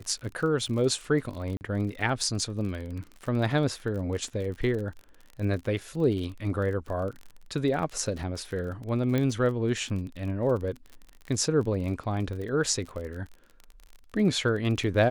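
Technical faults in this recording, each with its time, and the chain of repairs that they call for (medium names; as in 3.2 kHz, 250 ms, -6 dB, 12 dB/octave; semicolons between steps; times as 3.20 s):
crackle 43 per s -35 dBFS
1.57–1.61 s: dropout 39 ms
9.18 s: pop -15 dBFS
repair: de-click; interpolate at 1.57 s, 39 ms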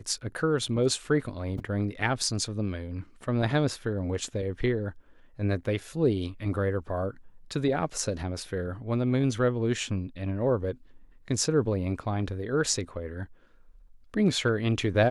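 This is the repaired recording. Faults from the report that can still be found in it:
nothing left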